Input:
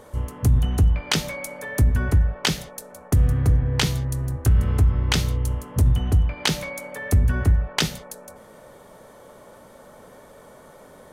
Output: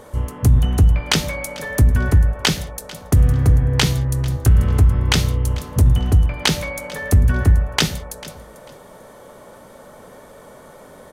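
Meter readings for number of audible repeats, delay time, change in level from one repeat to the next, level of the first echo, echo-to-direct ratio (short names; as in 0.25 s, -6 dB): 2, 0.444 s, -13.0 dB, -19.0 dB, -19.0 dB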